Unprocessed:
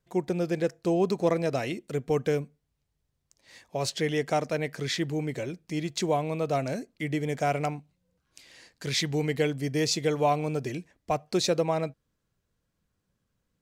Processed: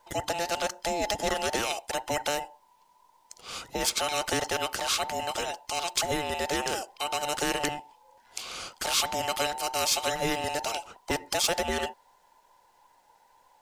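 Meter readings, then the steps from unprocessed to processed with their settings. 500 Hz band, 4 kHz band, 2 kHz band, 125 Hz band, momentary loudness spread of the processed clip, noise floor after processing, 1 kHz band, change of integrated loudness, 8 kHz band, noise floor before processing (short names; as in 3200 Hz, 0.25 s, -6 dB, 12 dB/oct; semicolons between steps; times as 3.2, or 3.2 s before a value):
-4.0 dB, +5.5 dB, +4.0 dB, -12.0 dB, 10 LU, -64 dBFS, +2.5 dB, -0.5 dB, +7.5 dB, -79 dBFS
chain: band inversion scrambler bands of 1000 Hz; spectral compressor 2:1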